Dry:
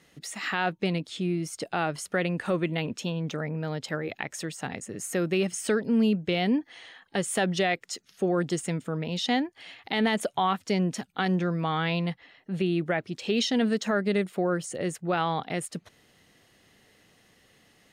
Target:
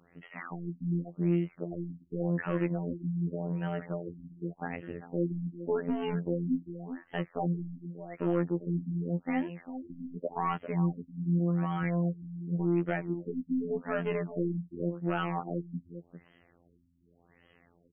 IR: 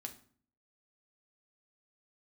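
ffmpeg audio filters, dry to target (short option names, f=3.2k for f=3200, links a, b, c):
-filter_complex "[0:a]asettb=1/sr,asplit=3[a][b][c];[a]atrim=end=10.564[d];[b]atrim=start=10.56:end=11.84,asetpts=PTS-STARTPTS,afade=t=in:d=0.004:c=qsin,afade=t=out:st=1.276:d=0.004:c=qsin,acrossover=split=240[e][f];[f]acompressor=threshold=-38dB:ratio=2[g];[e][g]amix=inputs=2:normalize=0[h];[c]atrim=start=11.836[i];[d][h]acrossfade=d=0.004:c1=hsin:c2=qsin[j];[j][i]acrossfade=d=0.004:c1=qsin:c2=hsin,asoftclip=type=hard:threshold=-21.5dB,asplit=2[k][l];[l]aecho=0:1:397:0.237[m];[k][m]amix=inputs=2:normalize=0,afftfilt=real='hypot(re,im)*cos(PI*b)':imag='0':win_size=2048:overlap=0.75,asplit=2[n][o];[o]alimiter=limit=-20.5dB:level=0:latency=1:release=137,volume=2dB[p];[n][p]amix=inputs=2:normalize=0,afftfilt=real='re*lt(b*sr/1024,290*pow(3300/290,0.5+0.5*sin(2*PI*0.87*pts/sr)))':imag='im*lt(b*sr/1024,290*pow(3300/290,0.5+0.5*sin(2*PI*0.87*pts/sr)))':win_size=1024:overlap=0.75,volume=-5dB"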